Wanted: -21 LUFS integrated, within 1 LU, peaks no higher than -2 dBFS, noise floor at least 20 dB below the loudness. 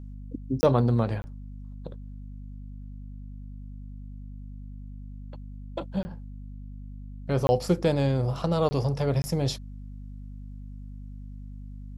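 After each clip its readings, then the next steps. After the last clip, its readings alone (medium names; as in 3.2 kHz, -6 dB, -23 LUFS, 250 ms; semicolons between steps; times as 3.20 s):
dropouts 6; longest dropout 20 ms; hum 50 Hz; highest harmonic 250 Hz; hum level -38 dBFS; loudness -26.5 LUFS; peak level -9.0 dBFS; loudness target -21.0 LUFS
-> interpolate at 0.61/1.22/6.03/7.47/8.69/9.22 s, 20 ms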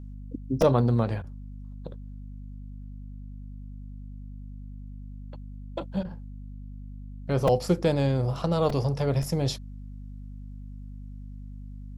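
dropouts 0; hum 50 Hz; highest harmonic 250 Hz; hum level -38 dBFS
-> hum notches 50/100/150/200/250 Hz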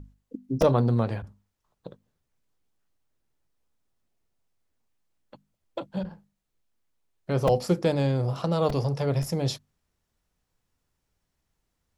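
hum not found; loudness -26.5 LUFS; peak level -8.5 dBFS; loudness target -21.0 LUFS
-> trim +5.5 dB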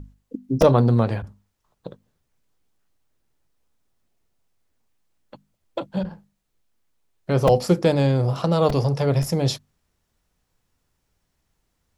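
loudness -21.0 LUFS; peak level -3.0 dBFS; noise floor -74 dBFS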